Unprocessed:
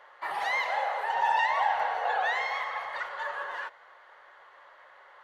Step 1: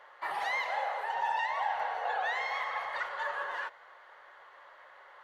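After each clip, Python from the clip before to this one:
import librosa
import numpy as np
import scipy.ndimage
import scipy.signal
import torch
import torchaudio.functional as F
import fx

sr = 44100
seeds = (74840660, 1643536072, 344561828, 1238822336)

y = fx.rider(x, sr, range_db=3, speed_s=0.5)
y = F.gain(torch.from_numpy(y), -3.5).numpy()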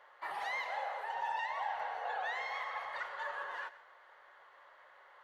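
y = x + 10.0 ** (-16.5 / 20.0) * np.pad(x, (int(129 * sr / 1000.0), 0))[:len(x)]
y = F.gain(torch.from_numpy(y), -5.5).numpy()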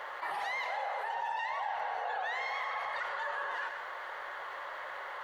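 y = fx.env_flatten(x, sr, amount_pct=70)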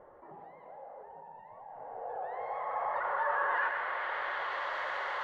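y = fx.filter_sweep_lowpass(x, sr, from_hz=260.0, to_hz=5600.0, start_s=1.63, end_s=4.78, q=0.97)
y = F.gain(torch.from_numpy(y), 6.0).numpy()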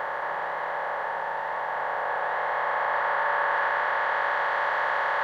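y = fx.bin_compress(x, sr, power=0.2)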